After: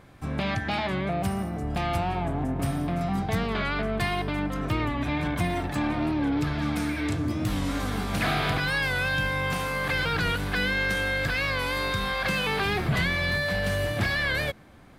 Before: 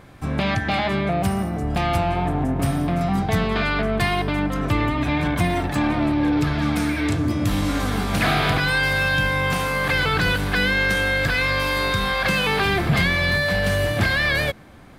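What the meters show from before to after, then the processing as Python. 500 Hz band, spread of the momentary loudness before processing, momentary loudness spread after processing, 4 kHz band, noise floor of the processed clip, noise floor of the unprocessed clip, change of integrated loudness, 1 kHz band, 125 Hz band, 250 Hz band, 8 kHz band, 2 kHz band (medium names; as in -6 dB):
-6.0 dB, 4 LU, 4 LU, -6.0 dB, -34 dBFS, -28 dBFS, -6.0 dB, -6.0 dB, -6.0 dB, -6.0 dB, -6.0 dB, -6.0 dB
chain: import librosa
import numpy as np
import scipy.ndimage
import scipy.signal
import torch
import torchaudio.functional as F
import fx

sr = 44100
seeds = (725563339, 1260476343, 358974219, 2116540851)

y = fx.record_warp(x, sr, rpm=45.0, depth_cents=100.0)
y = F.gain(torch.from_numpy(y), -6.0).numpy()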